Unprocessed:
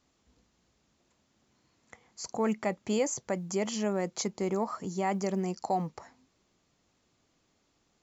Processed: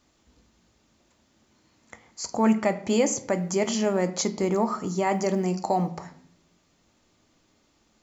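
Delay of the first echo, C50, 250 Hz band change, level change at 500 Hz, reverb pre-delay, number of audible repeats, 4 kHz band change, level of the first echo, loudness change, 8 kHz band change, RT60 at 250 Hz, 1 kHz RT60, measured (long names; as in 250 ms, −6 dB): no echo audible, 15.0 dB, +7.5 dB, +6.5 dB, 3 ms, no echo audible, +6.5 dB, no echo audible, +6.5 dB, can't be measured, 0.85 s, 0.55 s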